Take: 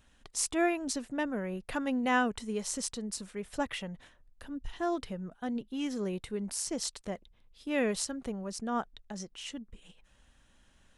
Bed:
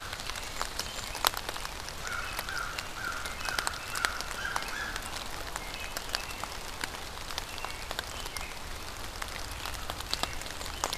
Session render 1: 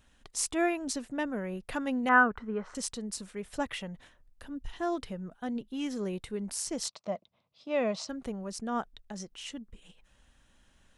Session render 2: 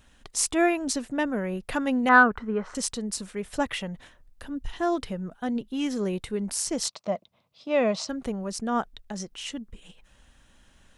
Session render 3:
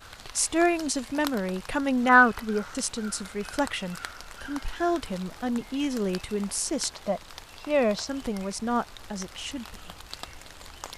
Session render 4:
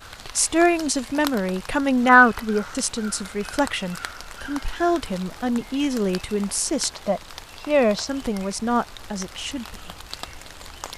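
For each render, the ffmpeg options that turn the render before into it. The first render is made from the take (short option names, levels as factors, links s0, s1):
-filter_complex "[0:a]asettb=1/sr,asplit=3[s0][s1][s2];[s0]atrim=end=2.094[s3];[s1]atrim=start=2.09:end=2.75,asetpts=PTS-STARTPTS,afade=t=in:d=0.004:c=qsin,afade=t=out:st=0.656:d=0.004:c=qsin,lowpass=f=1400:t=q:w=4[s4];[s2]atrim=start=2.746[s5];[s3][s4]acrossfade=d=0.004:c1=hsin:c2=qsin[s6];[s6][s5]acrossfade=d=0.004:c1=qsin:c2=hsin,asettb=1/sr,asplit=3[s7][s8][s9];[s7]atrim=end=6.884[s10];[s8]atrim=start=6.88:end=8.09,asetpts=PTS-STARTPTS,afade=t=in:d=0.004:c=qsin,afade=t=out:st=1.206:d=0.004:c=qsin,highpass=f=120:w=0.5412,highpass=f=120:w=1.3066,equalizer=f=280:t=q:w=4:g=-5,equalizer=f=410:t=q:w=4:g=-7,equalizer=f=640:t=q:w=4:g=10,equalizer=f=1100:t=q:w=4:g=5,equalizer=f=1700:t=q:w=4:g=-9,equalizer=f=3100:t=q:w=4:g=-4,lowpass=f=5600:w=0.5412,lowpass=f=5600:w=1.3066[s11];[s9]atrim=start=8.086[s12];[s10][s11]acrossfade=d=0.004:c1=hsin:c2=qsin[s13];[s13][s12]acrossfade=d=0.004:c1=qsin:c2=hsin"
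-af "acontrast=53"
-filter_complex "[1:a]volume=0.422[s0];[0:a][s0]amix=inputs=2:normalize=0"
-af "volume=1.78,alimiter=limit=0.794:level=0:latency=1"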